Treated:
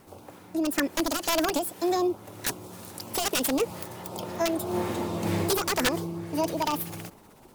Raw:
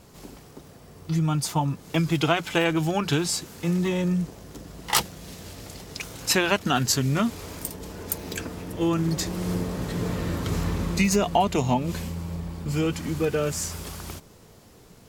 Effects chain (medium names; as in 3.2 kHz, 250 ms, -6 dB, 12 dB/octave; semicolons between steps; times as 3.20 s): integer overflow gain 15 dB; rotary cabinet horn 1 Hz, later 8 Hz, at 12.54 s; speed mistake 7.5 ips tape played at 15 ips